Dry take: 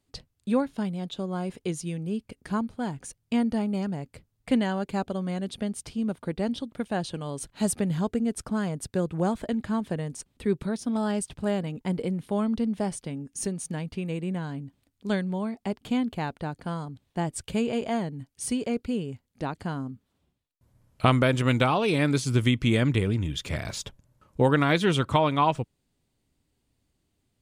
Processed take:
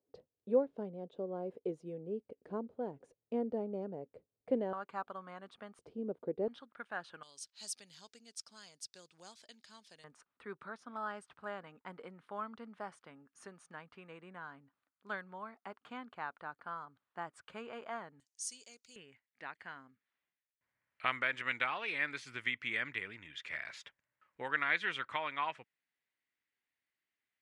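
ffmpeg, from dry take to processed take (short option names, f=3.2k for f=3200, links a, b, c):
-af "asetnsamples=n=441:p=0,asendcmd='4.73 bandpass f 1200;5.79 bandpass f 450;6.48 bandpass f 1400;7.23 bandpass f 5200;10.04 bandpass f 1300;18.2 bandpass f 6300;18.96 bandpass f 1900',bandpass=f=480:t=q:w=3.2:csg=0"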